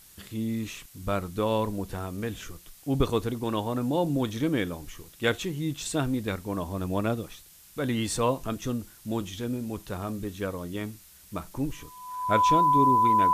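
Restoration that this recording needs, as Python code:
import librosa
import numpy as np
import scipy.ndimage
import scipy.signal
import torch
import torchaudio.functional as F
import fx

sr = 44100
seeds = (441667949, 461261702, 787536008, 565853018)

y = fx.notch(x, sr, hz=1000.0, q=30.0)
y = fx.noise_reduce(y, sr, print_start_s=7.26, print_end_s=7.76, reduce_db=19.0)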